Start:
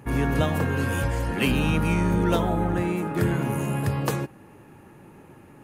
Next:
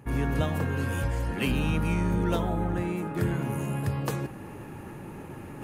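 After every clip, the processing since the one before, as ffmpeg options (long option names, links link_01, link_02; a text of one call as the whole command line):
ffmpeg -i in.wav -af "lowshelf=frequency=110:gain=5,areverse,acompressor=mode=upward:threshold=-23dB:ratio=2.5,areverse,volume=-5.5dB" out.wav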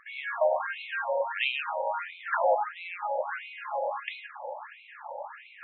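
ffmpeg -i in.wav -af "highpass=frequency=500:width_type=q:width=3.4,aeval=exprs='0.251*sin(PI/2*2.51*val(0)/0.251)':channel_layout=same,afftfilt=real='re*between(b*sr/1024,670*pow(3000/670,0.5+0.5*sin(2*PI*1.5*pts/sr))/1.41,670*pow(3000/670,0.5+0.5*sin(2*PI*1.5*pts/sr))*1.41)':imag='im*between(b*sr/1024,670*pow(3000/670,0.5+0.5*sin(2*PI*1.5*pts/sr))/1.41,670*pow(3000/670,0.5+0.5*sin(2*PI*1.5*pts/sr))*1.41)':win_size=1024:overlap=0.75,volume=-4dB" out.wav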